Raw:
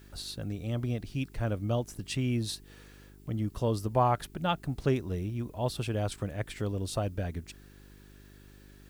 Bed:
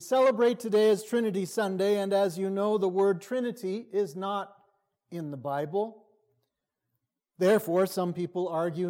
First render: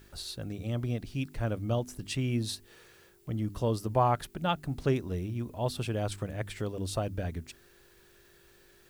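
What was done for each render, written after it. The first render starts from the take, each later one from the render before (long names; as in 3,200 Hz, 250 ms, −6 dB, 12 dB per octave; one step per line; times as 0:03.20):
hum removal 50 Hz, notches 6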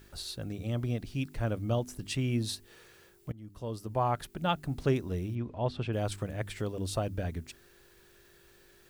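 0:03.32–0:04.49: fade in, from −20.5 dB
0:05.35–0:05.93: low-pass filter 3,000 Hz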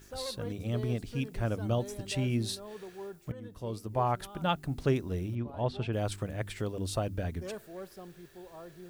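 mix in bed −18.5 dB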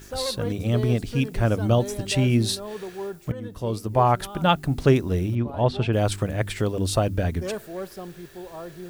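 level +10 dB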